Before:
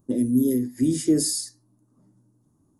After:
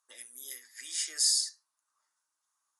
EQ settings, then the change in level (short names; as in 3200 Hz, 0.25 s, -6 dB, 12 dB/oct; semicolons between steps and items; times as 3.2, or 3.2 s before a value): HPF 1300 Hz 24 dB/oct; LPF 7500 Hz 12 dB/oct; +4.0 dB